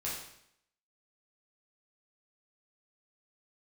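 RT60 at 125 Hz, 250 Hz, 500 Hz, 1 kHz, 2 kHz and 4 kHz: 0.75 s, 0.75 s, 0.70 s, 0.70 s, 0.70 s, 0.70 s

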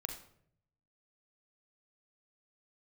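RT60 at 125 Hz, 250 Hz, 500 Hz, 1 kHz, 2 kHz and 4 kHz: 1.2 s, 0.85 s, 0.75 s, 0.55 s, 0.50 s, 0.45 s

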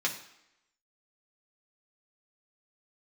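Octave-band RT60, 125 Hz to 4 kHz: 0.55 s, 0.80 s, 0.80 s, 0.85 s, 0.85 s, 0.75 s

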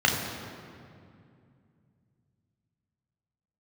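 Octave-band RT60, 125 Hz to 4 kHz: 4.0 s, 3.4 s, 2.5 s, 2.2 s, 2.0 s, 1.5 s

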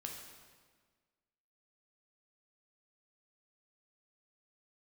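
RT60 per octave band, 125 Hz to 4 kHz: 1.6 s, 1.7 s, 1.6 s, 1.5 s, 1.4 s, 1.3 s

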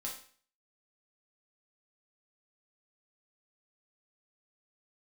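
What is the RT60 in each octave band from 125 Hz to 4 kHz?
0.45 s, 0.50 s, 0.45 s, 0.45 s, 0.45 s, 0.45 s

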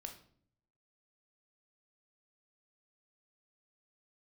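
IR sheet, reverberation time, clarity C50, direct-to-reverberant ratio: 0.55 s, 9.5 dB, 4.0 dB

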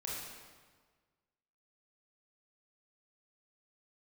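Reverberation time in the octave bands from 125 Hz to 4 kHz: 1.7 s, 1.6 s, 1.5 s, 1.5 s, 1.3 s, 1.2 s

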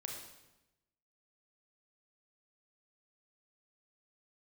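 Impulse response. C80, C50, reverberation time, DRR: 6.0 dB, 3.0 dB, 1.0 s, 0.5 dB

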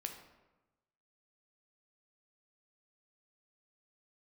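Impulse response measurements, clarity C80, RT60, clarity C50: 9.5 dB, 1.1 s, 7.0 dB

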